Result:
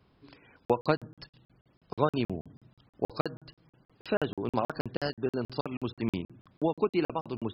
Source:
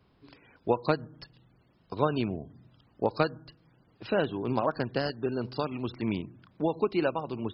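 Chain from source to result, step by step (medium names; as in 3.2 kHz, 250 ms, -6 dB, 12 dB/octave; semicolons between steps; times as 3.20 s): crackling interface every 0.16 s, samples 2048, zero, from 0.65 s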